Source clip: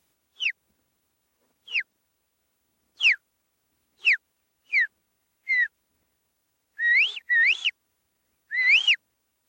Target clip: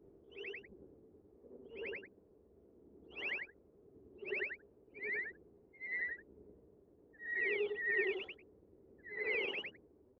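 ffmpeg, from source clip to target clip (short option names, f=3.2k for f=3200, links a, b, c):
-af "afftfilt=real='re':imag='-im':win_size=8192:overlap=0.75,lowpass=f=410:t=q:w=4.9,atempo=0.93,volume=15.5dB"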